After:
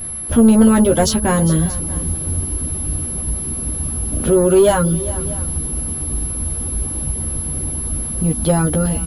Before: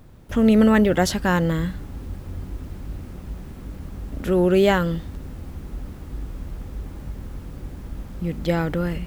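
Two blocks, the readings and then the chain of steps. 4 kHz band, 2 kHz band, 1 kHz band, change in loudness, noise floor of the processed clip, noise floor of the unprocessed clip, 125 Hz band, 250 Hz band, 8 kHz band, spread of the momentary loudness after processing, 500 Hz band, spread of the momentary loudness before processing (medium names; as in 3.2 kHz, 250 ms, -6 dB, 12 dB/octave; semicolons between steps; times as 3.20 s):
+4.0 dB, -1.5 dB, +4.0 dB, +3.0 dB, -25 dBFS, -39 dBFS, +7.0 dB, +5.5 dB, +22.0 dB, 10 LU, +5.5 dB, 20 LU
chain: vibrato 3.7 Hz 12 cents; level-controlled noise filter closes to 2.9 kHz, open at -12 dBFS; peaking EQ 2 kHz -12.5 dB 0.71 oct; in parallel at -2 dB: compression, threshold -25 dBFS, peak gain reduction 12.5 dB; on the sum: bit crusher 8-bit; reverb removal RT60 0.51 s; whistle 11 kHz -33 dBFS; saturation -11.5 dBFS, distortion -16 dB; doubling 13 ms -4 dB; multi-tap echo 405/632 ms -16.5/-20 dB; trim +4.5 dB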